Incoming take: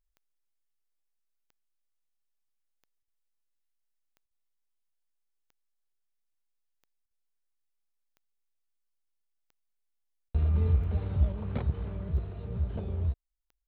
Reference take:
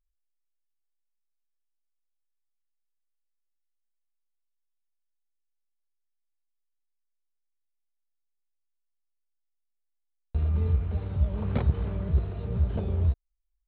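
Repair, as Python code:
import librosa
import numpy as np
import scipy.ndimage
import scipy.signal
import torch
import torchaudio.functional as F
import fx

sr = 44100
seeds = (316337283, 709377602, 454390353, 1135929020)

y = fx.fix_declip(x, sr, threshold_db=-16.5)
y = fx.fix_declick_ar(y, sr, threshold=10.0)
y = fx.fix_interpolate(y, sr, at_s=(3.03, 4.26, 7.06, 10.29), length_ms=49.0)
y = fx.gain(y, sr, db=fx.steps((0.0, 0.0), (11.32, 5.5)))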